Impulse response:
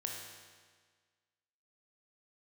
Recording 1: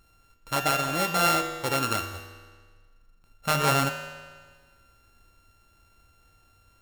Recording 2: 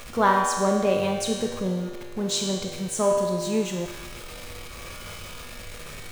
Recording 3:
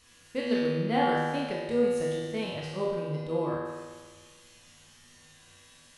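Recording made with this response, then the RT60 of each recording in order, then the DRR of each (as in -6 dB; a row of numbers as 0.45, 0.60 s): 2; 1.6, 1.6, 1.6 s; 5.0, -0.5, -6.0 dB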